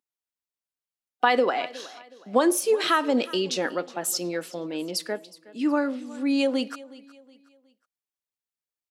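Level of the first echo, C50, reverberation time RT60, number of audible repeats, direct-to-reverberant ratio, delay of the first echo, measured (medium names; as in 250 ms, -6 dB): -20.0 dB, no reverb, no reverb, 2, no reverb, 367 ms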